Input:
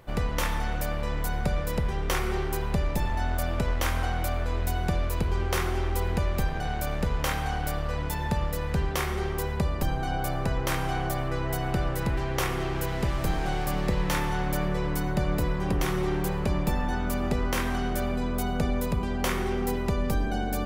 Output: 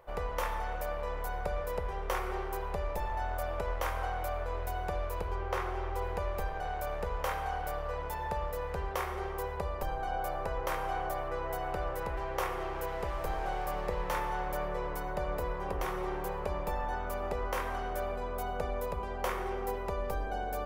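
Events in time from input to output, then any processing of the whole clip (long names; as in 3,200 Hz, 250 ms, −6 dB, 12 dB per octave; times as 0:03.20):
0:05.34–0:06.01: high-shelf EQ 5,800 Hz → 11,000 Hz −11.5 dB
whole clip: octave-band graphic EQ 125/250/500/1,000/4,000/8,000 Hz −8/−11/+8/+6/−4/−4 dB; level −8 dB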